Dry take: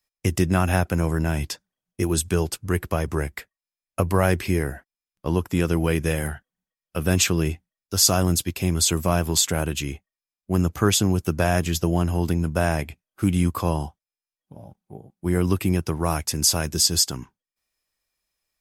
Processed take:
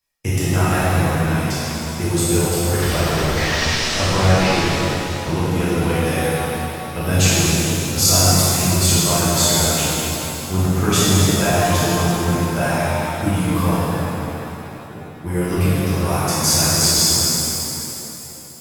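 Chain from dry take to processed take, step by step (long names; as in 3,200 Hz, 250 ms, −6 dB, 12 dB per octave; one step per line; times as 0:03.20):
0:02.79–0:04.67: linear delta modulator 32 kbit/s, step −19.5 dBFS
in parallel at −6 dB: hard clipping −22 dBFS, distortion −6 dB
on the sum: reverb reduction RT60 2 s
reverb with rising layers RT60 3.1 s, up +7 semitones, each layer −8 dB, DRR −10.5 dB
level −6 dB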